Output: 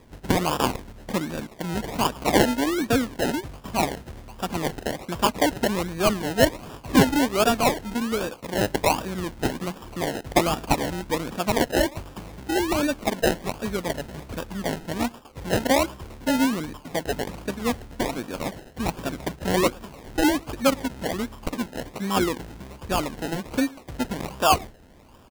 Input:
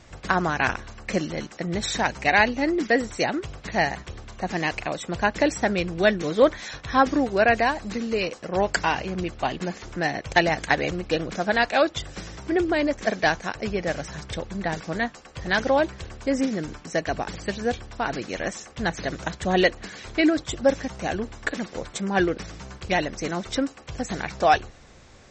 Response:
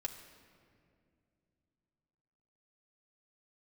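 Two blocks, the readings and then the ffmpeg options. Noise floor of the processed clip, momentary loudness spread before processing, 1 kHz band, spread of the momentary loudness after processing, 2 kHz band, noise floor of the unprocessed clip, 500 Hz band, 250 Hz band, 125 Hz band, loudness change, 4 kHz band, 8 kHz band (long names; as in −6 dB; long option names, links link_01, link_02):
−48 dBFS, 11 LU, −1.0 dB, 12 LU, −5.5 dB, −48 dBFS, −1.0 dB, +1.5 dB, +2.0 dB, −0.5 dB, +1.5 dB, +5.0 dB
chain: -filter_complex "[0:a]equalizer=frequency=250:width_type=o:width=0.33:gain=7,equalizer=frequency=1000:width_type=o:width=0.33:gain=9,equalizer=frequency=4000:width_type=o:width=0.33:gain=-9,asplit=2[link_01][link_02];[link_02]adelay=110.8,volume=-25dB,highshelf=frequency=4000:gain=-2.49[link_03];[link_01][link_03]amix=inputs=2:normalize=0,acrusher=samples=30:mix=1:aa=0.000001:lfo=1:lforange=18:lforate=1.3,volume=-2dB"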